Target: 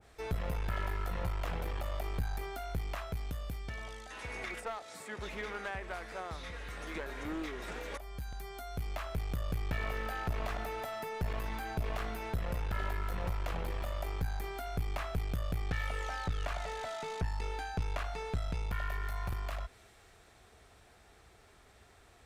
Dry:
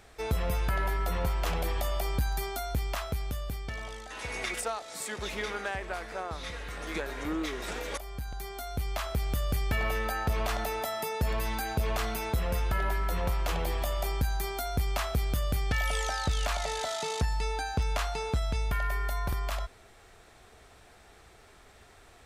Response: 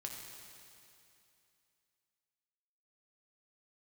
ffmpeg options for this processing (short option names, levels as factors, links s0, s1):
-filter_complex "[0:a]highpass=f=65:p=1,lowshelf=f=120:g=7,acrossover=split=2200[s0][s1];[s1]acompressor=threshold=0.00251:ratio=6[s2];[s0][s2]amix=inputs=2:normalize=0,aeval=exprs='clip(val(0),-1,0.0266)':c=same,adynamicequalizer=threshold=0.00316:dfrequency=1600:dqfactor=0.7:tfrequency=1600:tqfactor=0.7:attack=5:release=100:ratio=0.375:range=2.5:mode=boostabove:tftype=highshelf,volume=0.531"